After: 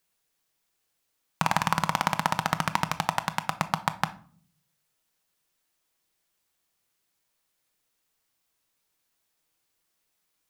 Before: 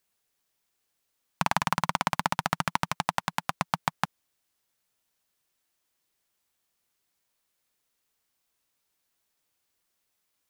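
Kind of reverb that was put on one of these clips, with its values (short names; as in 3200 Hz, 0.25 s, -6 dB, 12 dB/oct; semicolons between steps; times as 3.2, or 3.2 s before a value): shoebox room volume 510 m³, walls furnished, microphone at 0.61 m; gain +1 dB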